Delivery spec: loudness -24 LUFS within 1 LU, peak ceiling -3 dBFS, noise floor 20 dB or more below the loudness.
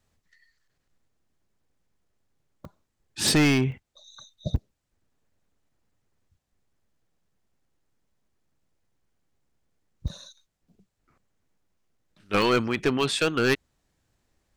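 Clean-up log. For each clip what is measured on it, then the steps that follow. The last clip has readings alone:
clipped samples 0.5%; clipping level -16.0 dBFS; dropouts 7; longest dropout 1.1 ms; loudness -24.5 LUFS; peak level -16.0 dBFS; loudness target -24.0 LUFS
-> clip repair -16 dBFS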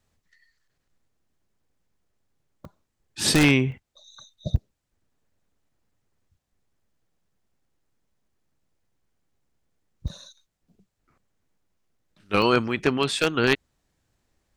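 clipped samples 0.0%; dropouts 7; longest dropout 1.1 ms
-> interpolate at 2.65/3.21/3.72/4.56/10.08/12.42/13.03 s, 1.1 ms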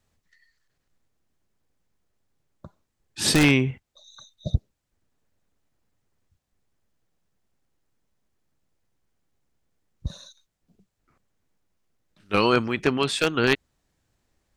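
dropouts 0; loudness -22.5 LUFS; peak level -7.0 dBFS; loudness target -24.0 LUFS
-> trim -1.5 dB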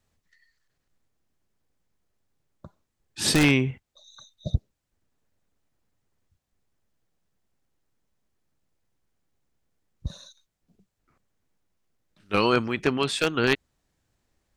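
loudness -24.0 LUFS; peak level -8.5 dBFS; noise floor -80 dBFS

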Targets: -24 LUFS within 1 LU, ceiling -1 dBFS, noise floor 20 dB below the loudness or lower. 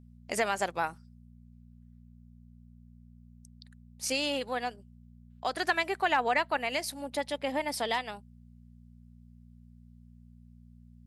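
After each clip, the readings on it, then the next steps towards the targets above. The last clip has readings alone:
hum 60 Hz; highest harmonic 240 Hz; hum level -51 dBFS; loudness -31.0 LUFS; peak level -14.0 dBFS; loudness target -24.0 LUFS
-> de-hum 60 Hz, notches 4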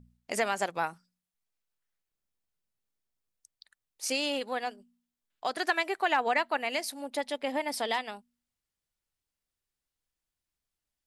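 hum not found; loudness -31.0 LUFS; peak level -14.0 dBFS; loudness target -24.0 LUFS
-> trim +7 dB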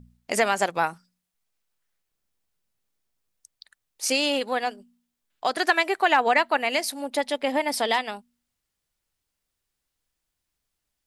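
loudness -24.0 LUFS; peak level -7.0 dBFS; noise floor -82 dBFS

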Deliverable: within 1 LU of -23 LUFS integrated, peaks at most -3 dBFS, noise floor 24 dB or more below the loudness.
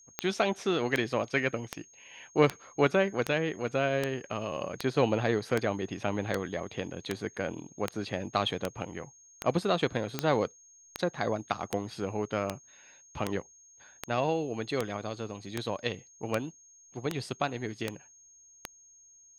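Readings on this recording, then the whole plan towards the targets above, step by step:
clicks found 25; steady tone 6.5 kHz; tone level -55 dBFS; loudness -31.5 LUFS; peak level -8.5 dBFS; loudness target -23.0 LUFS
-> de-click; band-stop 6.5 kHz, Q 30; trim +8.5 dB; peak limiter -3 dBFS

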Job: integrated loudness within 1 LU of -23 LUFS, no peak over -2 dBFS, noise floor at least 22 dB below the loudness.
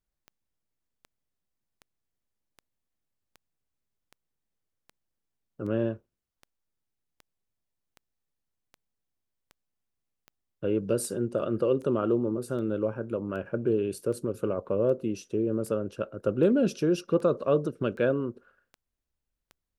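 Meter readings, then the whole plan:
clicks found 26; loudness -28.5 LUFS; peak level -12.0 dBFS; loudness target -23.0 LUFS
-> de-click; trim +5.5 dB

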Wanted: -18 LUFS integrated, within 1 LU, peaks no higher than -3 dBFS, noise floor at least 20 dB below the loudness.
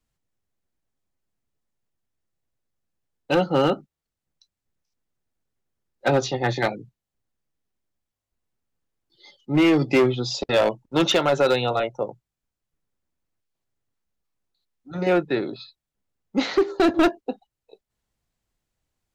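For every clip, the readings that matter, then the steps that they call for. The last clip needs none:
clipped samples 1.0%; clipping level -13.0 dBFS; loudness -22.0 LUFS; peak level -13.0 dBFS; loudness target -18.0 LUFS
-> clip repair -13 dBFS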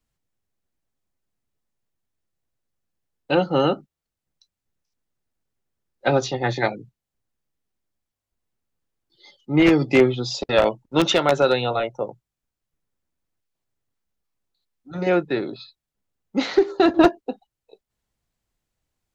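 clipped samples 0.0%; loudness -21.0 LUFS; peak level -4.0 dBFS; loudness target -18.0 LUFS
-> trim +3 dB; peak limiter -3 dBFS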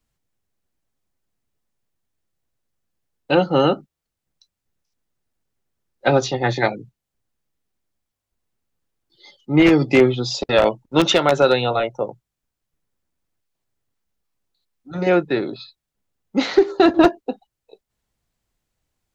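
loudness -18.5 LUFS; peak level -3.0 dBFS; noise floor -83 dBFS

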